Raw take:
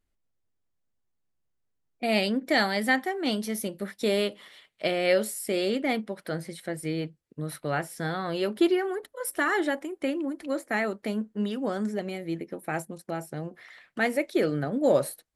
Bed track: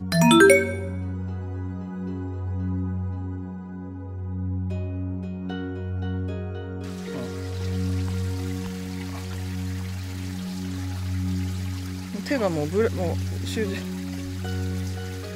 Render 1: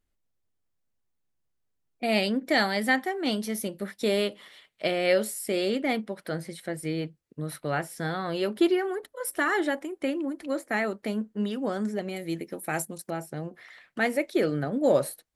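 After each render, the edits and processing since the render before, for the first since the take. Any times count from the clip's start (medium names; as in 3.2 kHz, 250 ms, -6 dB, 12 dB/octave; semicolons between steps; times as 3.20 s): 12.16–13.10 s: treble shelf 3.9 kHz +11.5 dB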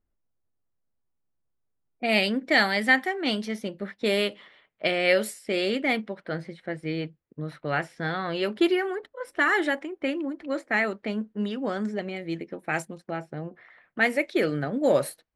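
level-controlled noise filter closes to 1.4 kHz, open at -21 dBFS; dynamic bell 2.2 kHz, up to +6 dB, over -43 dBFS, Q 0.97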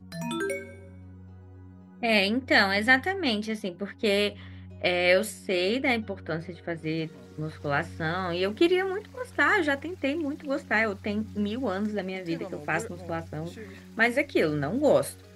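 add bed track -16.5 dB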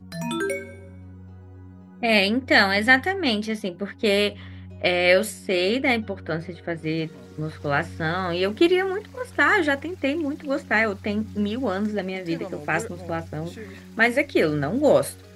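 trim +4 dB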